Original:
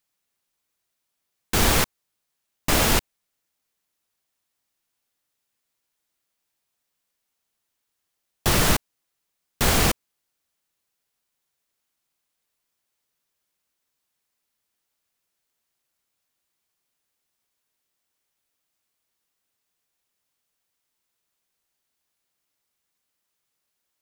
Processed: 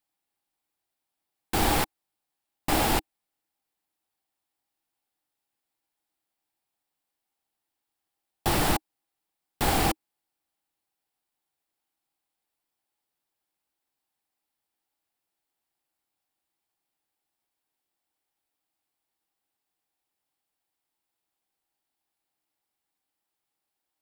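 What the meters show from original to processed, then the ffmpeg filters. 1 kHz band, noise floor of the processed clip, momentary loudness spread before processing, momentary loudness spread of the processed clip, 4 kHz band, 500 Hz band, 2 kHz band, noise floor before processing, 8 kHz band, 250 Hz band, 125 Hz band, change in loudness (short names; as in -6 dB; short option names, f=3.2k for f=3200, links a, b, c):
0.0 dB, -85 dBFS, 8 LU, 9 LU, -6.5 dB, -3.5 dB, -6.0 dB, -80 dBFS, -8.0 dB, -2.5 dB, -6.0 dB, -5.0 dB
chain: -af "equalizer=f=315:t=o:w=0.33:g=8,equalizer=f=800:t=o:w=0.33:g=11,equalizer=f=6.3k:t=o:w=0.33:g=-6,volume=-6dB"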